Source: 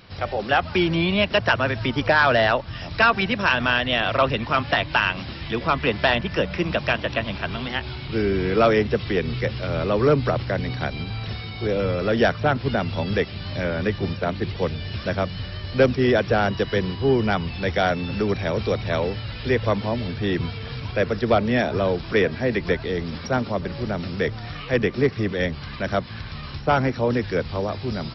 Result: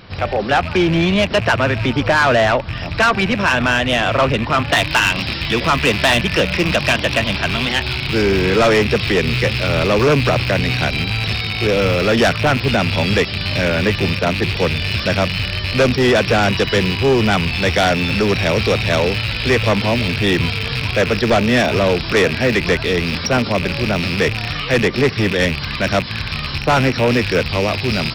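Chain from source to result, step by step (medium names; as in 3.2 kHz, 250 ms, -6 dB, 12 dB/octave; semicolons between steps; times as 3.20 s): rattle on loud lows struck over -31 dBFS, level -22 dBFS; treble shelf 2.7 kHz -4 dB, from 4.72 s +9 dB; saturation -17 dBFS, distortion -11 dB; trim +8.5 dB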